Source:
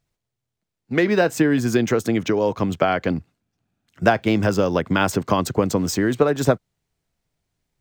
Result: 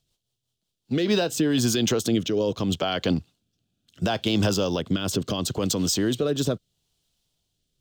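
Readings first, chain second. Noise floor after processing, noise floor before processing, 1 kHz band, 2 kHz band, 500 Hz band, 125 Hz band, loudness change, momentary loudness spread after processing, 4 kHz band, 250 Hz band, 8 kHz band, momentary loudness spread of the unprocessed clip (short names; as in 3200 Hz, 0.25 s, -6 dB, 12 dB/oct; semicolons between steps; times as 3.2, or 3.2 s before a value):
-81 dBFS, -82 dBFS, -10.0 dB, -9.5 dB, -6.0 dB, -3.0 dB, -4.0 dB, 6 LU, +5.0 dB, -3.5 dB, +3.0 dB, 4 LU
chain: resonant high shelf 2600 Hz +7 dB, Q 3; limiter -13.5 dBFS, peak gain reduction 11.5 dB; rotary speaker horn 5.5 Hz, later 0.75 Hz, at 0.65; gain +1 dB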